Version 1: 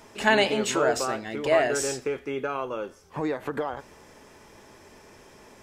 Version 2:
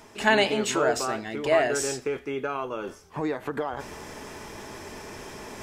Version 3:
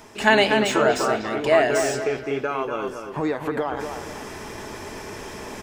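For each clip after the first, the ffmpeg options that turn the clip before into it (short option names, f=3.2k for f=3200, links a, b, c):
-af "bandreject=f=530:w=12,areverse,acompressor=mode=upward:threshold=-29dB:ratio=2.5,areverse"
-filter_complex "[0:a]acrossover=split=4300[a][b];[a]aecho=1:1:240|480|720|960:0.447|0.17|0.0645|0.0245[c];[b]asoftclip=type=tanh:threshold=-34.5dB[d];[c][d]amix=inputs=2:normalize=0,volume=4dB"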